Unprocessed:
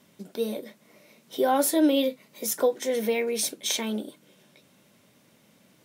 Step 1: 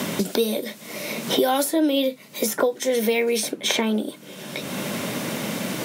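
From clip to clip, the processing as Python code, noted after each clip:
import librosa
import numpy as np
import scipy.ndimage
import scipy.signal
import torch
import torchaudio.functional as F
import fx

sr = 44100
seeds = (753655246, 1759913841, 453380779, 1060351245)

y = fx.band_squash(x, sr, depth_pct=100)
y = F.gain(torch.from_numpy(y), 5.0).numpy()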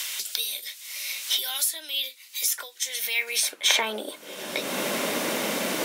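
y = fx.filter_sweep_highpass(x, sr, from_hz=2900.0, to_hz=340.0, start_s=2.89, end_s=4.49, q=0.79)
y = F.gain(torch.from_numpy(y), 2.5).numpy()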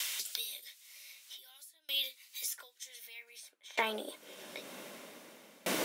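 y = fx.tremolo_decay(x, sr, direction='decaying', hz=0.53, depth_db=29)
y = F.gain(torch.from_numpy(y), -4.0).numpy()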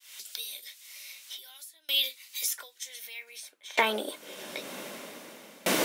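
y = fx.fade_in_head(x, sr, length_s=0.85)
y = F.gain(torch.from_numpy(y), 7.5).numpy()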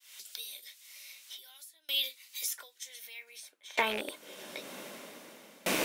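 y = fx.rattle_buzz(x, sr, strikes_db=-40.0, level_db=-19.0)
y = F.gain(torch.from_numpy(y), -4.5).numpy()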